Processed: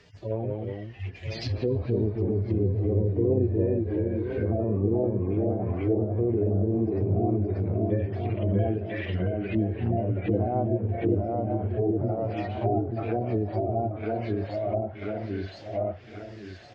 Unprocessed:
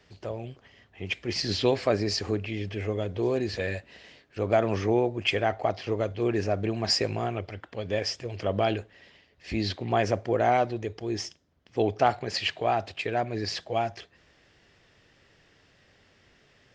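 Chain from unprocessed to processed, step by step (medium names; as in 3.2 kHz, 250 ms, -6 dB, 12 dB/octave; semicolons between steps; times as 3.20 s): harmonic-percussive separation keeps harmonic; peak limiter -22.5 dBFS, peak gain reduction 10 dB; 7.86–9.55 s: high-order bell 2.5 kHz +13.5 dB; feedback delay 996 ms, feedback 45%, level -10 dB; ever faster or slower copies 166 ms, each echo -1 st, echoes 2; dynamic bell 1.7 kHz, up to -7 dB, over -58 dBFS, Q 4.7; low-pass that closes with the level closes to 550 Hz, closed at -28 dBFS; trim +6.5 dB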